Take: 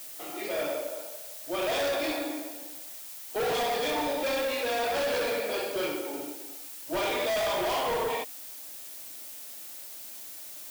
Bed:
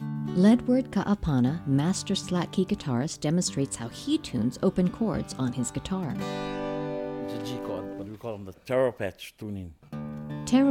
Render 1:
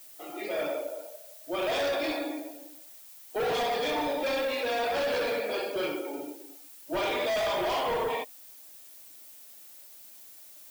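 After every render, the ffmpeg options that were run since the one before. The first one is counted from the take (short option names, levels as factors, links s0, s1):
-af "afftdn=nr=9:nf=-43"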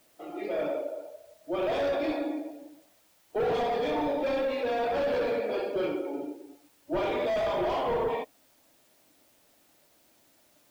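-af "lowpass=f=3100:p=1,tiltshelf=f=790:g=4.5"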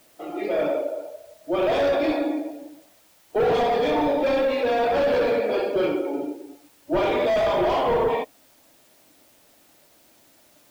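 -af "volume=2.24"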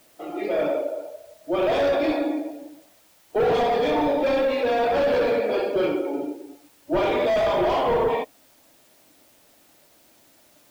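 -af anull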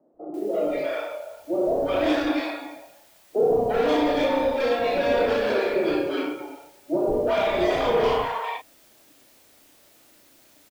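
-filter_complex "[0:a]asplit=2[s0][s1];[s1]adelay=33,volume=0.596[s2];[s0][s2]amix=inputs=2:normalize=0,acrossover=split=150|750[s3][s4][s5];[s3]adelay=140[s6];[s5]adelay=340[s7];[s6][s4][s7]amix=inputs=3:normalize=0"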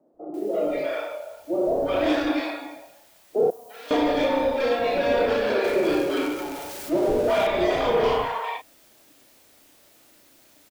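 -filter_complex "[0:a]asettb=1/sr,asplit=3[s0][s1][s2];[s0]atrim=end=3.504[s3];[s1]atrim=start=3.5:end=3.91,asetpts=PTS-STARTPTS,afade=t=in:d=0.004:c=qsin,afade=t=out:st=0.406:d=0.004:c=qsin,aderivative[s4];[s2]atrim=start=3.906[s5];[s3][s4]acrossfade=d=0.004:c1=hsin:c2=qsin[s6];[s6][s5]acrossfade=d=0.004:c1=qsin:c2=hsin,asettb=1/sr,asplit=3[s7][s8][s9];[s7]atrim=end=5.644[s10];[s8]atrim=start=5.64:end=7.47,asetpts=PTS-STARTPTS,afade=t=in:d=0.004:c=qsin,afade=t=out:st=1.826:d=0.004:c=qsin,aeval=exprs='val(0)+0.5*0.0282*sgn(val(0))':c=same[s11];[s9]atrim=start=7.466[s12];[s10][s11]acrossfade=d=0.004:c1=hsin:c2=qsin[s13];[s13][s12]acrossfade=d=0.004:c1=qsin:c2=hsin"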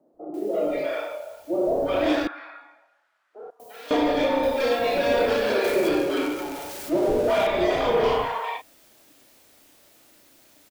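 -filter_complex "[0:a]asettb=1/sr,asplit=3[s0][s1][s2];[s0]atrim=end=2.274[s3];[s1]atrim=start=2.27:end=3.6,asetpts=PTS-STARTPTS,afade=t=in:d=0.004:c=qsin,afade=t=out:st=1.326:d=0.004:c=qsin,bandpass=f=1400:t=q:w=4[s4];[s2]atrim=start=3.596[s5];[s3][s4]acrossfade=d=0.004:c1=hsin:c2=qsin[s6];[s6][s5]acrossfade=d=0.004:c1=qsin:c2=hsin,asettb=1/sr,asplit=3[s7][s8][s9];[s7]atrim=end=4.434[s10];[s8]atrim=start=4.43:end=5.89,asetpts=PTS-STARTPTS,afade=t=in:d=0.004:c=qsin,afade=t=out:st=1.456:d=0.004:c=qsin,highshelf=f=5600:g=9.5[s11];[s9]atrim=start=5.886[s12];[s10][s11]acrossfade=d=0.004:c1=hsin:c2=qsin[s13];[s13][s12]acrossfade=d=0.004:c1=qsin:c2=hsin"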